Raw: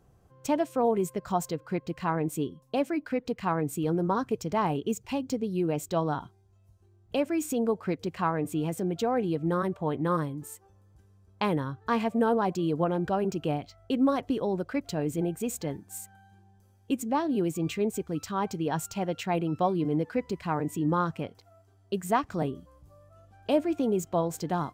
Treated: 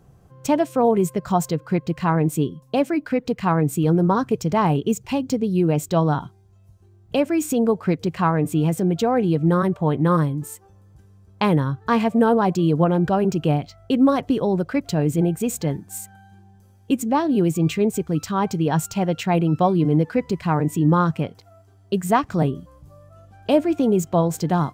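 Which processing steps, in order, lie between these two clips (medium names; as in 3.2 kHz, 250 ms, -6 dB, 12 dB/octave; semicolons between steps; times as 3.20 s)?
peaking EQ 150 Hz +6 dB 0.83 oct; trim +7 dB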